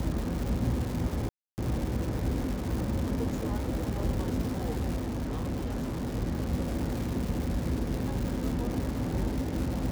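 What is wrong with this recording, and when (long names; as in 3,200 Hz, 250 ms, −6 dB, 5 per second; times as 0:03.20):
surface crackle 430 per second −33 dBFS
0:01.29–0:01.58: drop-out 289 ms
0:04.95–0:06.16: clipping −28.5 dBFS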